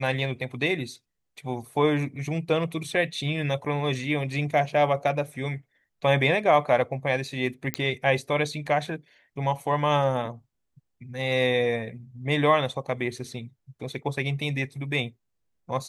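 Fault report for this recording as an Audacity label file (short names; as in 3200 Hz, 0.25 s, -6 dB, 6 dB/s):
7.740000	7.740000	pop -10 dBFS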